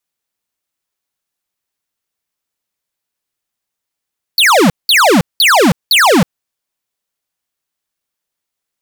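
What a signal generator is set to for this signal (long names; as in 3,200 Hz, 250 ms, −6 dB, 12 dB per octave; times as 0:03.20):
repeated falling chirps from 4,700 Hz, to 150 Hz, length 0.32 s square, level −8 dB, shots 4, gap 0.19 s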